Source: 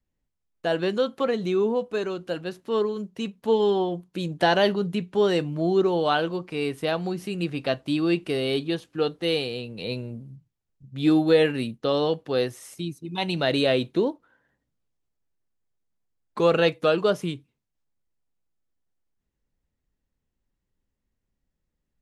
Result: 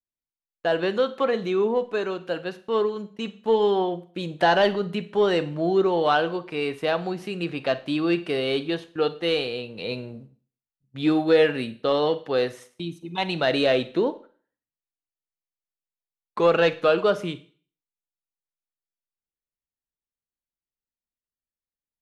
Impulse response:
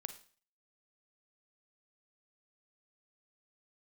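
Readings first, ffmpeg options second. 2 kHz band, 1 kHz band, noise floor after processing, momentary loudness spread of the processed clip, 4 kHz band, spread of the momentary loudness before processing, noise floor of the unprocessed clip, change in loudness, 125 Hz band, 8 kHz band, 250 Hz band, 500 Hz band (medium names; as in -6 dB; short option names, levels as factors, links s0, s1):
+2.5 dB, +3.0 dB, under -85 dBFS, 12 LU, 0.0 dB, 12 LU, -81 dBFS, +1.0 dB, -3.0 dB, no reading, -1.0 dB, +1.0 dB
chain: -filter_complex "[0:a]asplit=2[s0][s1];[s1]highpass=f=720:p=1,volume=2.82,asoftclip=type=tanh:threshold=0.422[s2];[s0][s2]amix=inputs=2:normalize=0,lowpass=f=2200:p=1,volume=0.501,agate=range=0.1:threshold=0.00631:ratio=16:detection=peak,asplit=2[s3][s4];[1:a]atrim=start_sample=2205[s5];[s4][s5]afir=irnorm=-1:irlink=0,volume=2.11[s6];[s3][s6]amix=inputs=2:normalize=0,volume=0.447"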